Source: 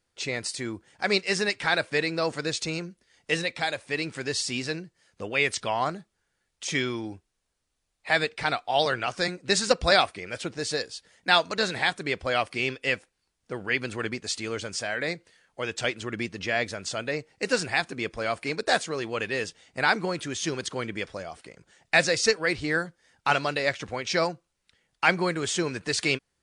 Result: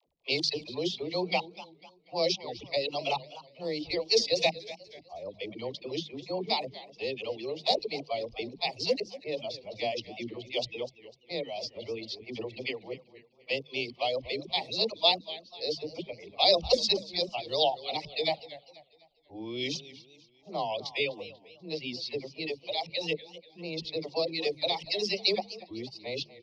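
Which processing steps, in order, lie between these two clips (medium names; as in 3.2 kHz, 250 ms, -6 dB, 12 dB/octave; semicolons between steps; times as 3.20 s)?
reverse the whole clip; crackle 35 per s -40 dBFS; graphic EQ 500/1000/2000 Hz +3/+4/+12 dB; level-controlled noise filter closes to 1.4 kHz, open at -13 dBFS; Chebyshev band-stop 670–3600 Hz, order 2; resonant high shelf 6.4 kHz -10 dB, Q 3; phase dispersion lows, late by 75 ms, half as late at 360 Hz; on a send: delay 226 ms -21 dB; on the sum: reverb removal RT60 1.5 s; hum notches 50/100/150/200 Hz; modulated delay 246 ms, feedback 40%, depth 188 cents, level -16.5 dB; trim -5.5 dB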